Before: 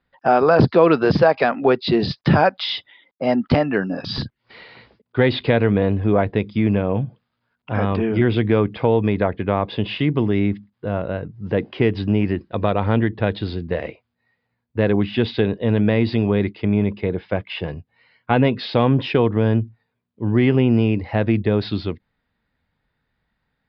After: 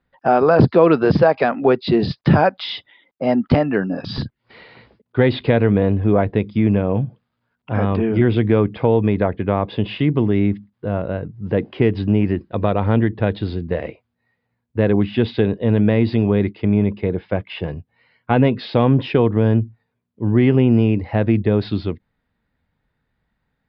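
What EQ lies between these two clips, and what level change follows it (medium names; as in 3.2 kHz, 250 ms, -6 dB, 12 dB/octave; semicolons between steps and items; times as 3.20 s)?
peaking EQ 1.4 kHz -2.5 dB 3 oct; treble shelf 4.3 kHz -10 dB; +2.5 dB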